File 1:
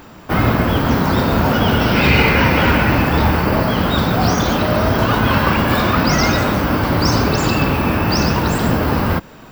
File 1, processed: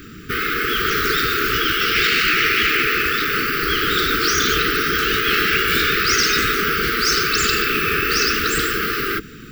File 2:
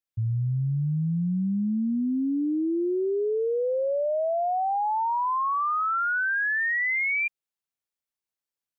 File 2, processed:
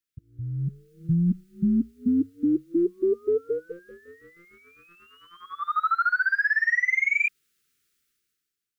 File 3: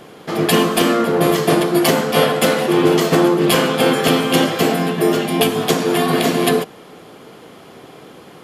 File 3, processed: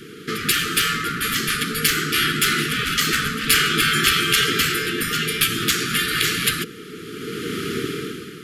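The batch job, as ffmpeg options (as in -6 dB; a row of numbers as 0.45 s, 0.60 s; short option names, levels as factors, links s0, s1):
-af "acontrast=58,afftfilt=real='re*lt(hypot(re,im),0.794)':imag='im*lt(hypot(re,im),0.794)':win_size=1024:overlap=0.75,dynaudnorm=f=130:g=11:m=6.31,asuperstop=centerf=750:order=20:qfactor=1,volume=0.668"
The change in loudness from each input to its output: -1.5 LU, +1.0 LU, -3.5 LU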